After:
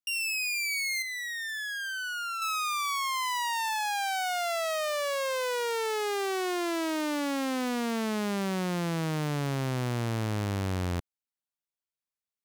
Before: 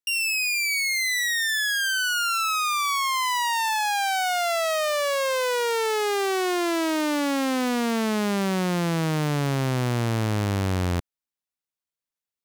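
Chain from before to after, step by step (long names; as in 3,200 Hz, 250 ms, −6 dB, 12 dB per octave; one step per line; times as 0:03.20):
0:01.02–0:02.42: high-shelf EQ 2,200 Hz −9.5 dB
level −6 dB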